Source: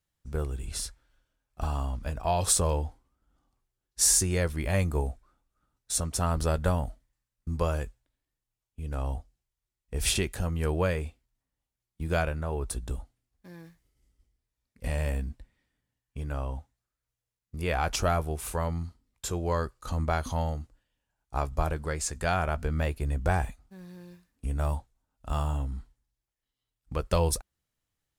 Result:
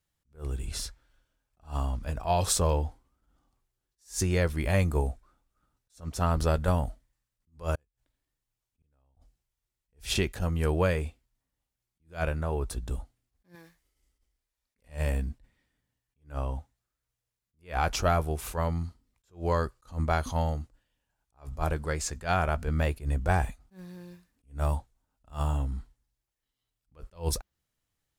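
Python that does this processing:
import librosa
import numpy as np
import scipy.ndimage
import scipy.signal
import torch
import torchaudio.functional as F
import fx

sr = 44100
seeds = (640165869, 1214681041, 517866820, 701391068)

y = fx.gate_flip(x, sr, shuts_db=-29.0, range_db=-41, at=(7.75, 9.17))
y = fx.peak_eq(y, sr, hz=120.0, db=-11.5, octaves=2.9, at=(13.55, 14.89))
y = fx.dynamic_eq(y, sr, hz=9300.0, q=1.6, threshold_db=-48.0, ratio=4.0, max_db=-7)
y = fx.attack_slew(y, sr, db_per_s=230.0)
y = y * librosa.db_to_amplitude(1.5)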